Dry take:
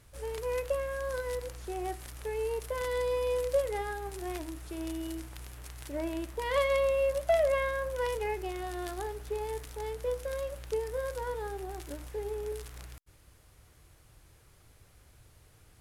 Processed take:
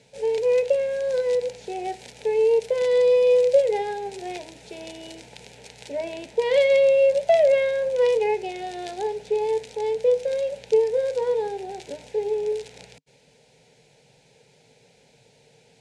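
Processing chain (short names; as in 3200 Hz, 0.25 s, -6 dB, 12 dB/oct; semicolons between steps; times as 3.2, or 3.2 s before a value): speaker cabinet 140–7600 Hz, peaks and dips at 150 Hz +4 dB, 270 Hz +9 dB, 460 Hz +9 dB, 890 Hz +9 dB, 2400 Hz +6 dB, 3900 Hz +4 dB; fixed phaser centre 310 Hz, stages 6; gain +6.5 dB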